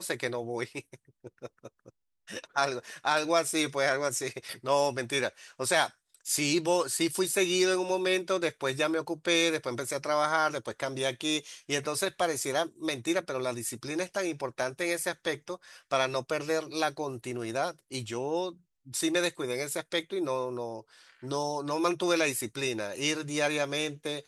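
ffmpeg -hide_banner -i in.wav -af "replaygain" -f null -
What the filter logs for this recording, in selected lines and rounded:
track_gain = +9.5 dB
track_peak = 0.204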